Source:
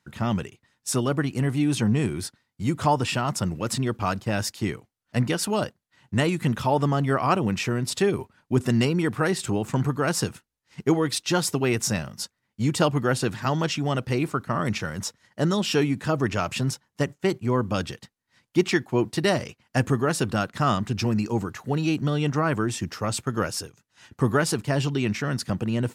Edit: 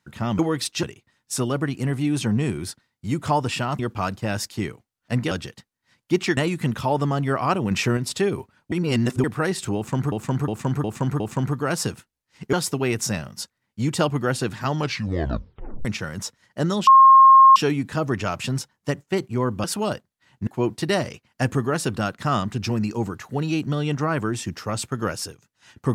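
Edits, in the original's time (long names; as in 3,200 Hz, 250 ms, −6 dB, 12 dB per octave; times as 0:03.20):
0:03.35–0:03.83: remove
0:05.35–0:06.18: swap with 0:17.76–0:18.82
0:07.52–0:07.78: clip gain +4.5 dB
0:08.53–0:09.05: reverse
0:09.57–0:09.93: repeat, 5 plays
0:10.90–0:11.34: move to 0:00.39
0:13.54: tape stop 1.12 s
0:15.68: insert tone 1,070 Hz −7 dBFS 0.69 s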